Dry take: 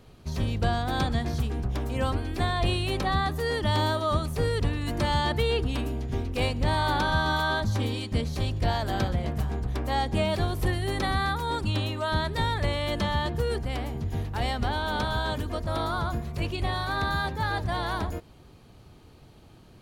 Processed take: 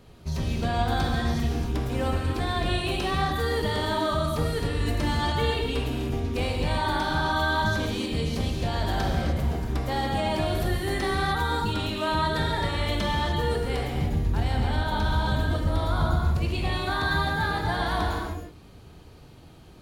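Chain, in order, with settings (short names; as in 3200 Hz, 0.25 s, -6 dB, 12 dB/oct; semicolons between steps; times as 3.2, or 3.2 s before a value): 13.97–16.42 low shelf 190 Hz +9.5 dB; limiter -20 dBFS, peak gain reduction 9 dB; non-linear reverb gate 0.33 s flat, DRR -1 dB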